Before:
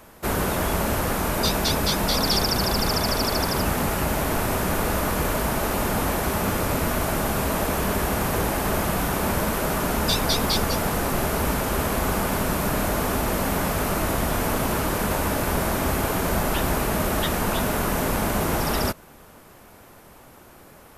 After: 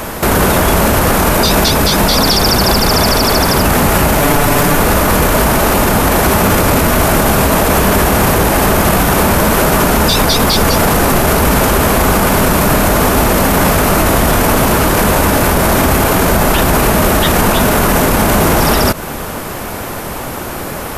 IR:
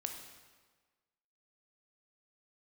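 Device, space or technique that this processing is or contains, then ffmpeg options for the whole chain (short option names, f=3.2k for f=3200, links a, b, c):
loud club master: -filter_complex "[0:a]asettb=1/sr,asplit=3[a][b][c];[a]atrim=end=4.214[d];[b]atrim=start=4.21:end=4.77,asetpts=PTS-STARTPTS,afade=t=in:d=0.004:c=qsin,afade=t=out:st=0.556:d=0.004:c=qsin,aecho=1:1:6.9:0.91,atrim=end_sample=24696[e];[c]atrim=start=4.766[f];[d][e]acrossfade=d=0.004:c1=hsin:c2=qsin[g];[g][f]acrossfade=d=0.004:c1=qsin:c2=hsin,acompressor=threshold=-28dB:ratio=2,asoftclip=type=hard:threshold=-17dB,alimiter=level_in=27dB:limit=-1dB:release=50:level=0:latency=1,volume=-1dB"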